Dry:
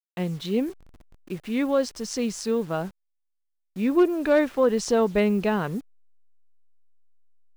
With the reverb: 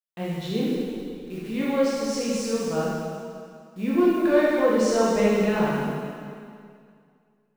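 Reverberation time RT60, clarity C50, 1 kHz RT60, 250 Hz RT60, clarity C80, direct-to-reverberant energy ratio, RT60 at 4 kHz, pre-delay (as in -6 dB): 2.2 s, -3.0 dB, 2.2 s, 2.3 s, -1.0 dB, -7.5 dB, 2.0 s, 8 ms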